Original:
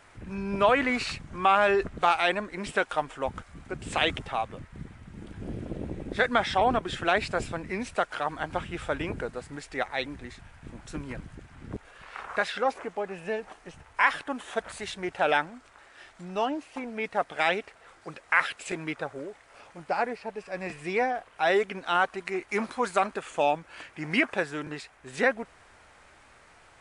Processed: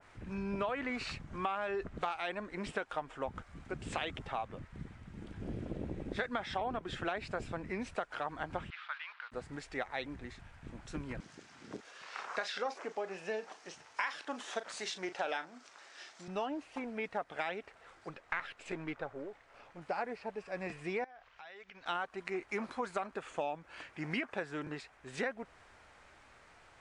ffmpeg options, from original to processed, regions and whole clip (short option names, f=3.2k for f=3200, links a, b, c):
-filter_complex "[0:a]asettb=1/sr,asplit=3[a][b][c];[a]atrim=end=8.704[d];[b]atrim=start=8.7:end=9.32,asetpts=PTS-STARTPTS,afade=t=in:d=0.004:c=qsin,afade=t=out:st=0.616:d=0.004:c=qsin,acrusher=bits=6:mix=0:aa=0.5,asuperpass=centerf=2200:order=8:qfactor=0.66[e];[c]atrim=start=9.316[f];[d][e]acrossfade=d=0.004:c1=hsin:c2=qsin[g];[g][f]acrossfade=d=0.004:c1=qsin:c2=hsin,asettb=1/sr,asplit=3[h][i][j];[h]atrim=end=11.204[k];[i]atrim=start=11.2:end=16.28,asetpts=PTS-STARTPTS,afade=t=in:d=0.004:c=qsin,afade=t=out:st=5.076:d=0.004:c=qsin,highpass=250,equalizer=f=5.6k:w=1:g=12.5,asplit=2[l][m];[m]adelay=37,volume=-12dB[n];[l][n]amix=inputs=2:normalize=0,atrim=end_sample=224028[o];[j]atrim=start=16.276[p];[k][o]acrossfade=d=0.004:c1=hsin:c2=qsin[q];[q][p]acrossfade=d=0.004:c1=qsin:c2=hsin,asettb=1/sr,asplit=3[r][s][t];[r]atrim=end=18.094[u];[s]atrim=start=18.09:end=19.82,asetpts=PTS-STARTPTS,afade=t=in:d=0.004:c=qsin,afade=t=out:st=1.726:d=0.004:c=qsin,aeval=exprs='if(lt(val(0),0),0.708*val(0),val(0))':c=same,highshelf=f=5.8k:g=-9.5[v];[t]atrim=start=19.816[w];[u][v]acrossfade=d=0.004:c1=hsin:c2=qsin[x];[x][w]acrossfade=d=0.004:c1=qsin:c2=hsin,asettb=1/sr,asplit=3[y][z][aa];[y]atrim=end=21.044[ab];[z]atrim=start=21.04:end=21.86,asetpts=PTS-STARTPTS,afade=t=in:d=0.004:c=qsin,afade=t=out:st=0.816:d=0.004:c=qsin,lowpass=f=6k:w=0.5412,lowpass=f=6k:w=1.3066,equalizer=f=290:t=o:w=2.6:g=-14,acompressor=threshold=-45dB:ratio=6:attack=3.2:release=140:knee=1:detection=peak[ac];[aa]atrim=start=21.856[ad];[ab][ac]acrossfade=d=0.004:c1=hsin:c2=qsin[ae];[ae][ad]acrossfade=d=0.004:c1=qsin:c2=hsin,lowpass=7.7k,acompressor=threshold=-28dB:ratio=6,adynamicequalizer=threshold=0.00447:dfrequency=2100:dqfactor=0.7:tfrequency=2100:tqfactor=0.7:attack=5:release=100:ratio=0.375:range=2:mode=cutabove:tftype=highshelf,volume=-4.5dB"